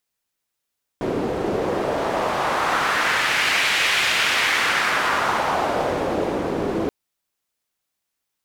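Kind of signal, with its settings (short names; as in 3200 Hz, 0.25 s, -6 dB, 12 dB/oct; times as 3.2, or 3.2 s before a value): wind-like swept noise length 5.88 s, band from 360 Hz, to 2400 Hz, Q 1.5, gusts 1, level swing 4 dB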